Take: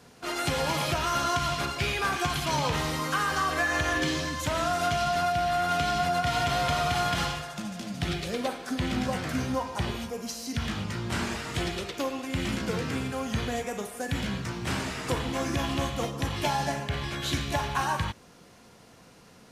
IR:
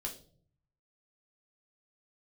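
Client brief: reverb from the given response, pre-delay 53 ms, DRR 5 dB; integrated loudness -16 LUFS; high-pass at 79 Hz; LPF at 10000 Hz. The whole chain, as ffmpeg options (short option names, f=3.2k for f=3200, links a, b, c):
-filter_complex "[0:a]highpass=79,lowpass=10k,asplit=2[a][b];[1:a]atrim=start_sample=2205,adelay=53[c];[b][c]afir=irnorm=-1:irlink=0,volume=-4.5dB[d];[a][d]amix=inputs=2:normalize=0,volume=12dB"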